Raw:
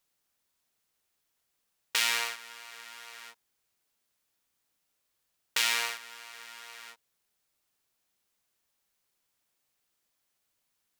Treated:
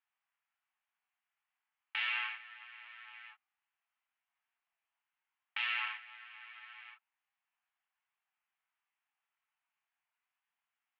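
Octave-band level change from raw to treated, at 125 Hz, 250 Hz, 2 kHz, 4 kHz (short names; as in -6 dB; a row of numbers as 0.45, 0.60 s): n/a, under -35 dB, -4.5 dB, -10.5 dB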